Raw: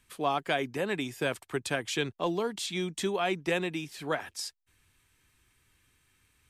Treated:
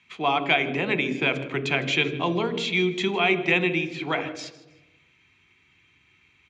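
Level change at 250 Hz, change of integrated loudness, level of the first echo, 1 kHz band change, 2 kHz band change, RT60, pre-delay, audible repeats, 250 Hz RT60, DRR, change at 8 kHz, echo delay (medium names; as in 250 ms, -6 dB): +7.0 dB, +8.0 dB, -19.0 dB, +6.0 dB, +10.5 dB, 1.1 s, 3 ms, 2, 1.3 s, 10.5 dB, -4.0 dB, 157 ms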